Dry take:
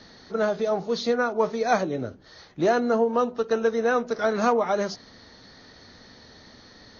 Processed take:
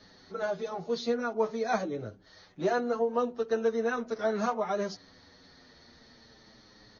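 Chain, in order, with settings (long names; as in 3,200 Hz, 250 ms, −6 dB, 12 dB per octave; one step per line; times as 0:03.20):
barber-pole flanger 7.6 ms −0.41 Hz
level −4 dB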